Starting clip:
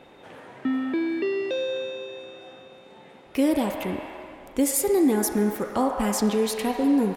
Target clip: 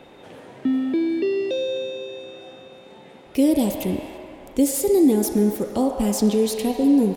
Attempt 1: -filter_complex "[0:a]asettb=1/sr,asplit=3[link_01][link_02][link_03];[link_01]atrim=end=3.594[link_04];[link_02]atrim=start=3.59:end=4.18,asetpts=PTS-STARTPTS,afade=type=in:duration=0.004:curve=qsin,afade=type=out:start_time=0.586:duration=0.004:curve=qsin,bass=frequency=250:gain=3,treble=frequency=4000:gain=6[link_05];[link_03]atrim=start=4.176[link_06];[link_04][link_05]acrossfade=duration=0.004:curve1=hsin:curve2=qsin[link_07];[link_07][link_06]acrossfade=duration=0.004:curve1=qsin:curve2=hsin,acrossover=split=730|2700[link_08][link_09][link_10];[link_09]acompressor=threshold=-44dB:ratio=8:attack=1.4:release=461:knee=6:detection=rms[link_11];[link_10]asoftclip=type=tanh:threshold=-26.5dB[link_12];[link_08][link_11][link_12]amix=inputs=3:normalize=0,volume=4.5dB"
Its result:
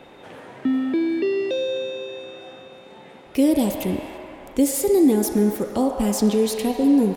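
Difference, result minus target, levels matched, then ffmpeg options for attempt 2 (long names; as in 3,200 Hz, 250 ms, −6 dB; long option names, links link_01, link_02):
downward compressor: peak gain reduction −8.5 dB
-filter_complex "[0:a]asettb=1/sr,asplit=3[link_01][link_02][link_03];[link_01]atrim=end=3.594[link_04];[link_02]atrim=start=3.59:end=4.18,asetpts=PTS-STARTPTS,afade=type=in:duration=0.004:curve=qsin,afade=type=out:start_time=0.586:duration=0.004:curve=qsin,bass=frequency=250:gain=3,treble=frequency=4000:gain=6[link_05];[link_03]atrim=start=4.176[link_06];[link_04][link_05]acrossfade=duration=0.004:curve1=hsin:curve2=qsin[link_07];[link_07][link_06]acrossfade=duration=0.004:curve1=qsin:curve2=hsin,acrossover=split=730|2700[link_08][link_09][link_10];[link_09]acompressor=threshold=-53.5dB:ratio=8:attack=1.4:release=461:knee=6:detection=rms[link_11];[link_10]asoftclip=type=tanh:threshold=-26.5dB[link_12];[link_08][link_11][link_12]amix=inputs=3:normalize=0,volume=4.5dB"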